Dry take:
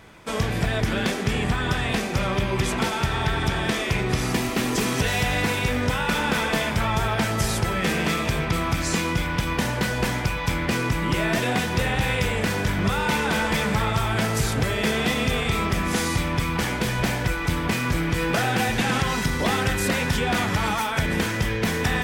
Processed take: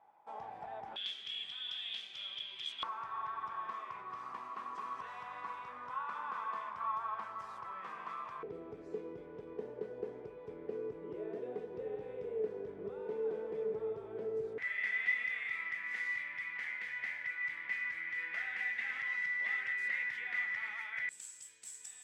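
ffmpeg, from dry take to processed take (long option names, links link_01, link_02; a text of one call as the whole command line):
ffmpeg -i in.wav -af "asetnsamples=nb_out_samples=441:pad=0,asendcmd='0.96 bandpass f 3300;2.83 bandpass f 1100;8.43 bandpass f 430;14.58 bandpass f 2000;21.09 bandpass f 7800',bandpass=frequency=820:width_type=q:width=16:csg=0" out.wav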